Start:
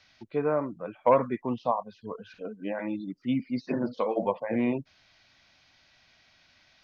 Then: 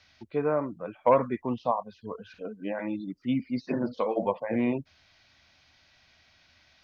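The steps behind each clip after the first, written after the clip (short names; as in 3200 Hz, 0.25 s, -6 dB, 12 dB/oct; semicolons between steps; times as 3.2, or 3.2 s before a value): bell 78 Hz +10 dB 0.33 oct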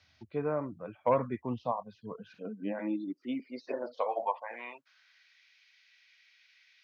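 high-pass sweep 92 Hz -> 2100 Hz, 1.63–5.41; gain -6 dB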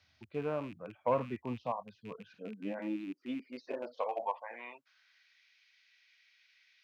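rattling part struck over -45 dBFS, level -39 dBFS; gain -3.5 dB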